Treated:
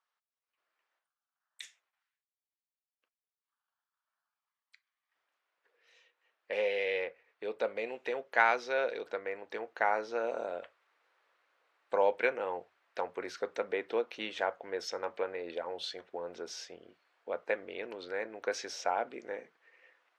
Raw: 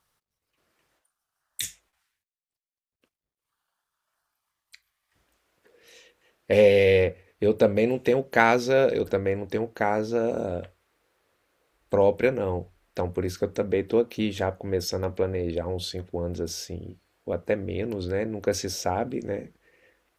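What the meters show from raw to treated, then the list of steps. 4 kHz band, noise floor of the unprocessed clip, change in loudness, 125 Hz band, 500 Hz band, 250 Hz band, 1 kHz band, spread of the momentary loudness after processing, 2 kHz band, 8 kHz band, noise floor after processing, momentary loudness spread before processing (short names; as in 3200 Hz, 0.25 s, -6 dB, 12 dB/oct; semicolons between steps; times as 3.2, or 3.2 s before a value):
-7.5 dB, under -85 dBFS, -9.5 dB, under -30 dB, -11.0 dB, -19.0 dB, -4.5 dB, 13 LU, -4.5 dB, under -10 dB, under -85 dBFS, 13 LU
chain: HPF 920 Hz 12 dB/oct; vocal rider within 5 dB 2 s; tape spacing loss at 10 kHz 23 dB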